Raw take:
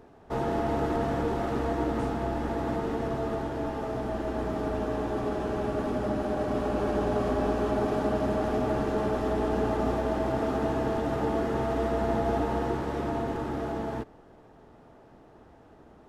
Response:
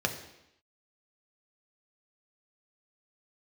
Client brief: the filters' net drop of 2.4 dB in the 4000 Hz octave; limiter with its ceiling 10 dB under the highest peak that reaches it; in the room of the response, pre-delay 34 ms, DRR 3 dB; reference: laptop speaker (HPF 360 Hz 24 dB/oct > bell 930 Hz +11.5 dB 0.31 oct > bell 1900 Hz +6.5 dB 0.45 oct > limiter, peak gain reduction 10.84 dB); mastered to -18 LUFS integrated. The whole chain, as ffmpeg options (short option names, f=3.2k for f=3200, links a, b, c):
-filter_complex "[0:a]equalizer=f=4k:t=o:g=-4,alimiter=level_in=1.5dB:limit=-24dB:level=0:latency=1,volume=-1.5dB,asplit=2[a][b];[1:a]atrim=start_sample=2205,adelay=34[c];[b][c]afir=irnorm=-1:irlink=0,volume=-11.5dB[d];[a][d]amix=inputs=2:normalize=0,highpass=f=360:w=0.5412,highpass=f=360:w=1.3066,equalizer=f=930:t=o:w=0.31:g=11.5,equalizer=f=1.9k:t=o:w=0.45:g=6.5,volume=20dB,alimiter=limit=-10dB:level=0:latency=1"